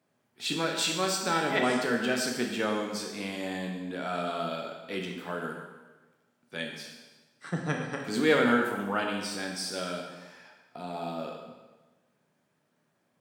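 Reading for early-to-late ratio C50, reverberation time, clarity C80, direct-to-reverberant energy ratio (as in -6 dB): 4.0 dB, 1.2 s, 5.5 dB, 1.0 dB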